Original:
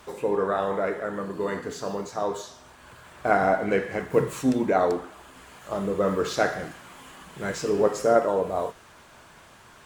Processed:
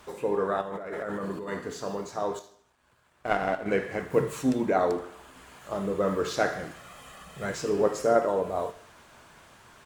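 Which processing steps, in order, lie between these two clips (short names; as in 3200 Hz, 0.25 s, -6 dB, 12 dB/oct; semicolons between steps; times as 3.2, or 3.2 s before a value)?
0.61–1.52 negative-ratio compressor -32 dBFS, ratio -1; 2.39–3.66 power-law curve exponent 1.4; 6.76–7.46 comb 1.6 ms, depth 62%; feedback echo 77 ms, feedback 48%, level -19 dB; gain -2.5 dB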